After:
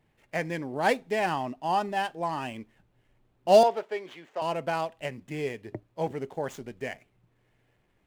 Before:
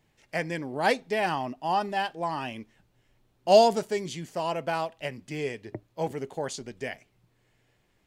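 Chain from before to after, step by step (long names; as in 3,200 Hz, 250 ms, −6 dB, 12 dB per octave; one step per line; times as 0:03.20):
running median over 9 samples
0:03.63–0:04.42: three-way crossover with the lows and the highs turned down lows −24 dB, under 370 Hz, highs −15 dB, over 4,400 Hz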